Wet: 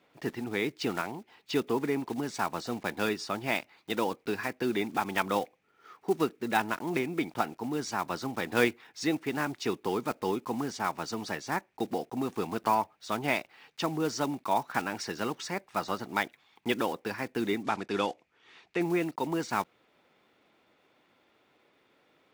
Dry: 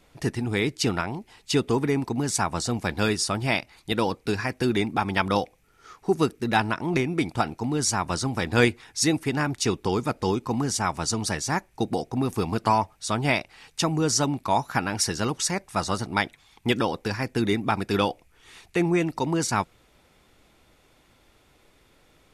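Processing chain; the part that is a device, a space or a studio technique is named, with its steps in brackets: early digital voice recorder (band-pass 220–3500 Hz; block-companded coder 5-bit); 17.63–18.81 s: Chebyshev low-pass 6.5 kHz, order 2; trim -4.5 dB

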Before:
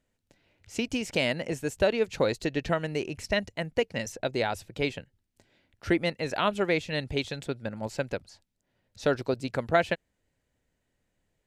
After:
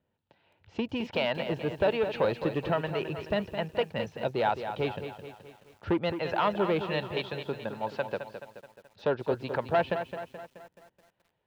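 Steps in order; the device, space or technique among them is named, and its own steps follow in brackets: 7.11–9.31 s: high-pass 210 Hz 6 dB/octave; guitar amplifier with harmonic tremolo (harmonic tremolo 1.2 Hz, depth 50%, crossover 540 Hz; saturation -22 dBFS, distortion -14 dB; cabinet simulation 88–3500 Hz, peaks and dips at 270 Hz -6 dB, 900 Hz +7 dB, 2.1 kHz -7 dB); bit-crushed delay 214 ms, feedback 55%, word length 10-bit, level -9 dB; trim +3.5 dB

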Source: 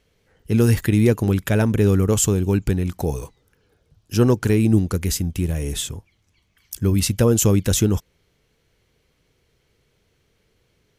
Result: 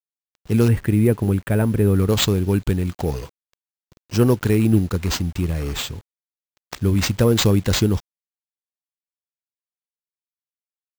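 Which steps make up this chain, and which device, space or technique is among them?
0.68–1.96 s: distance through air 390 m; early 8-bit sampler (sample-rate reducer 11 kHz, jitter 0%; bit crusher 8-bit)

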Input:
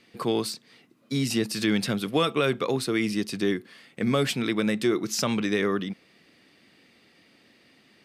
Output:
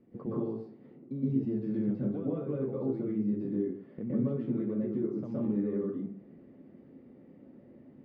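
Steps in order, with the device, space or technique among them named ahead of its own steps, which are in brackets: television next door (compression 5:1, threshold -38 dBFS, peak gain reduction 17.5 dB; low-pass 410 Hz 12 dB/octave; reverberation RT60 0.55 s, pre-delay 113 ms, DRR -7.5 dB); trim +2 dB

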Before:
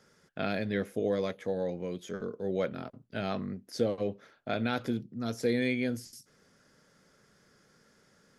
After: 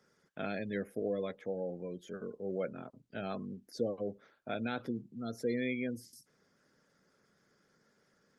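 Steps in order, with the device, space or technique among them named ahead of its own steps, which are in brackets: noise-suppressed video call (high-pass 120 Hz 12 dB/octave; spectral gate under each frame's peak -25 dB strong; trim -5 dB; Opus 32 kbps 48 kHz)

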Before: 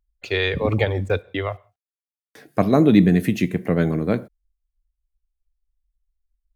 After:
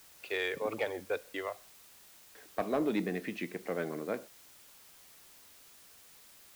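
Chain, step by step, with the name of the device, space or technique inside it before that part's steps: tape answering machine (band-pass 400–3200 Hz; saturation -13 dBFS, distortion -17 dB; wow and flutter; white noise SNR 19 dB); trim -9 dB

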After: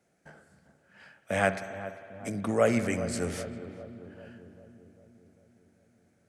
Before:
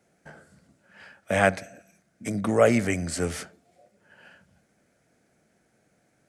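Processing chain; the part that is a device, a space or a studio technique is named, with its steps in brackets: dub delay into a spring reverb (filtered feedback delay 398 ms, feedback 63%, low-pass 1 kHz, level -11.5 dB; spring tank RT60 2.4 s, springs 58 ms, chirp 25 ms, DRR 11 dB); trim -5 dB

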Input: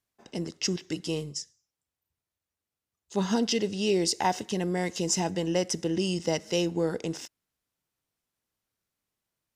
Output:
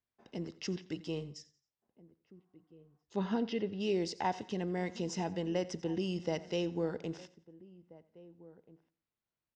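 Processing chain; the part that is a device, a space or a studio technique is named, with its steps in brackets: shout across a valley (distance through air 160 m; echo from a far wall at 280 m, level -20 dB); 2.40–3.00 s: spectral replace 630–1900 Hz before; 3.18–3.79 s: low-pass 4.3 kHz -> 2.4 kHz 12 dB/octave; feedback delay 88 ms, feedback 33%, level -19 dB; trim -6.5 dB

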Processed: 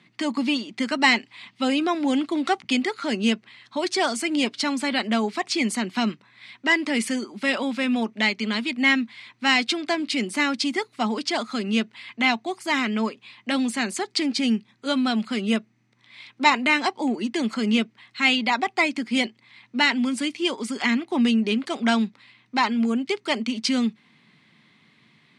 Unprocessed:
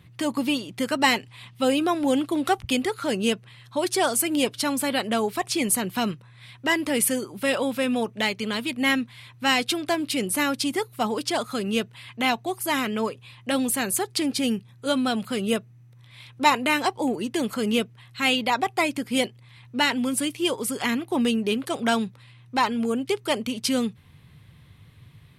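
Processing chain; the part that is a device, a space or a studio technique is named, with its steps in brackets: television speaker (cabinet simulation 210–7400 Hz, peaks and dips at 220 Hz +7 dB, 500 Hz -7 dB, 2.1 kHz +6 dB, 4.5 kHz +4 dB)

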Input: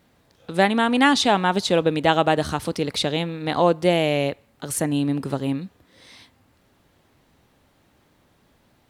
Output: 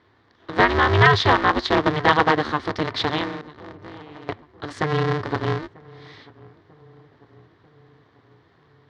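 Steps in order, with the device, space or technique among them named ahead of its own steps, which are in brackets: 3.41–4.29 s: amplifier tone stack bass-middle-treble 10-0-1; ring modulator pedal into a guitar cabinet (polarity switched at an audio rate 150 Hz; cabinet simulation 88–4400 Hz, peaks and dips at 100 Hz +9 dB, 200 Hz -5 dB, 600 Hz -5 dB, 1.1 kHz +5 dB, 1.8 kHz +6 dB, 2.6 kHz -7 dB); filtered feedback delay 943 ms, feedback 62%, low-pass 1 kHz, level -22.5 dB; trim +1 dB

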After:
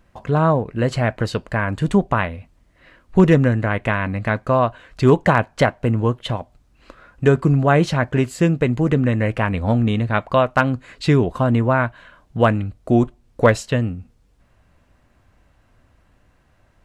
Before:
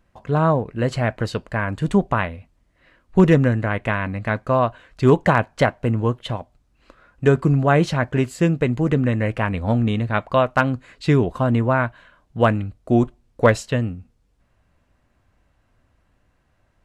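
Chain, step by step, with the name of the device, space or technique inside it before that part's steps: parallel compression (in parallel at 0 dB: compression, threshold -31 dBFS, peak gain reduction 20.5 dB)

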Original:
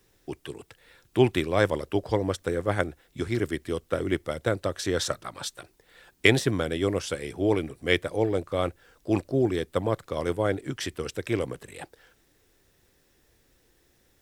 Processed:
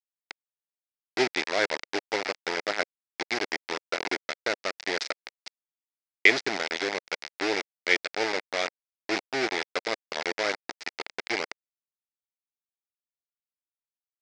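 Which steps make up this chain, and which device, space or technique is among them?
hand-held game console (bit crusher 4-bit; cabinet simulation 470–5600 Hz, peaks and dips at 530 Hz -4 dB, 1.1 kHz -8 dB, 2.1 kHz +6 dB, 3.1 kHz -4 dB, 5 kHz +5 dB)

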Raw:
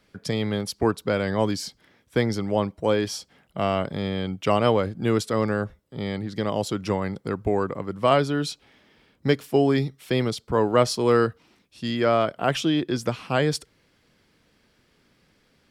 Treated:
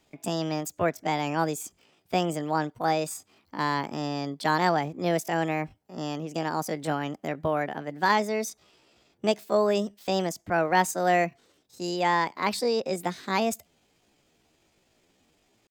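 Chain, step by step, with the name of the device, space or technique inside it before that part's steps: chipmunk voice (pitch shift +7 st); trim -3.5 dB

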